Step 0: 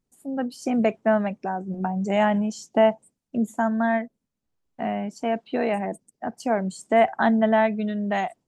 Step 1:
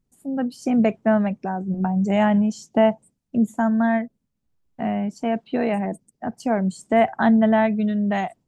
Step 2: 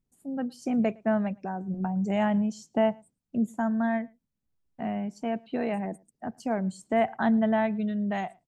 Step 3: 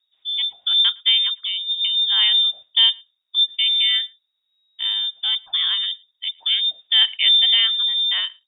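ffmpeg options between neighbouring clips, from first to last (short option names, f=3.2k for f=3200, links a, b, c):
-af "bass=f=250:g=8,treble=f=4k:g=-1"
-filter_complex "[0:a]asplit=2[a][b];[b]adelay=110.8,volume=-27dB,highshelf=f=4k:g=-2.49[c];[a][c]amix=inputs=2:normalize=0,volume=-7dB"
-af "lowpass=f=3.2k:t=q:w=0.5098,lowpass=f=3.2k:t=q:w=0.6013,lowpass=f=3.2k:t=q:w=0.9,lowpass=f=3.2k:t=q:w=2.563,afreqshift=-3800,volume=8dB"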